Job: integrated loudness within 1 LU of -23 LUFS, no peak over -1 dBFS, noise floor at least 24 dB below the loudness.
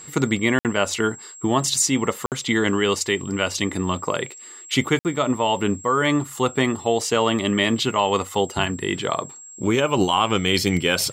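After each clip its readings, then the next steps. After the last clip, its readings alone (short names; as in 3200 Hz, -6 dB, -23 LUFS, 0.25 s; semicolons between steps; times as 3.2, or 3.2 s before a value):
dropouts 3; longest dropout 58 ms; steady tone 7600 Hz; tone level -39 dBFS; loudness -21.5 LUFS; peak -4.5 dBFS; loudness target -23.0 LUFS
-> interpolate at 0.59/2.26/4.99, 58 ms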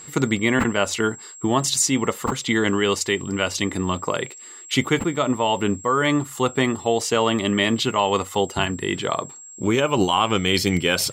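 dropouts 0; steady tone 7600 Hz; tone level -39 dBFS
-> notch 7600 Hz, Q 30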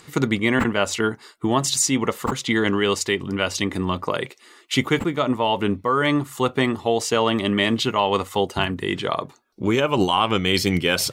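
steady tone none; loudness -22.0 LUFS; peak -4.5 dBFS; loudness target -23.0 LUFS
-> gain -1 dB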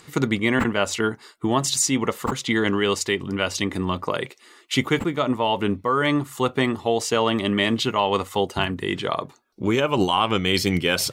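loudness -23.0 LUFS; peak -5.5 dBFS; noise floor -54 dBFS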